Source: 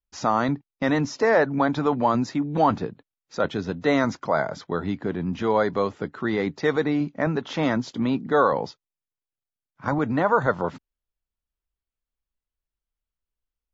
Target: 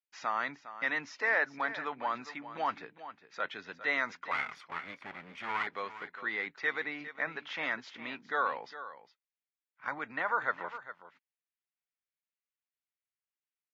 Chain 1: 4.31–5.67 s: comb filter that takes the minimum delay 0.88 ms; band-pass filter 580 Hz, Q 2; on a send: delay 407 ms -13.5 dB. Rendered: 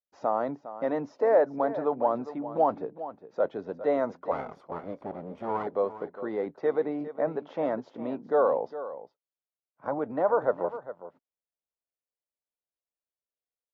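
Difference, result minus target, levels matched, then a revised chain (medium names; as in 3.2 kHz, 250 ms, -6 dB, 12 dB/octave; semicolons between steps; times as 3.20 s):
2 kHz band -17.5 dB
4.31–5.67 s: comb filter that takes the minimum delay 0.88 ms; band-pass filter 2.1 kHz, Q 2; on a send: delay 407 ms -13.5 dB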